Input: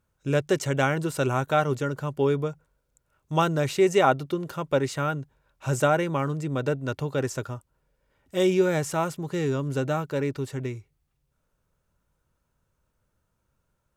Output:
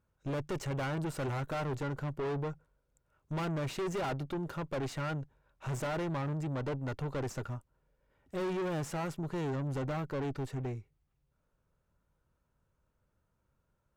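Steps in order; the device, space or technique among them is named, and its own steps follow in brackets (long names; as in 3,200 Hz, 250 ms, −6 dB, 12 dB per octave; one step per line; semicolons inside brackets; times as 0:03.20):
tube preamp driven hard (tube saturation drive 32 dB, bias 0.55; high-shelf EQ 3,200 Hz −9 dB)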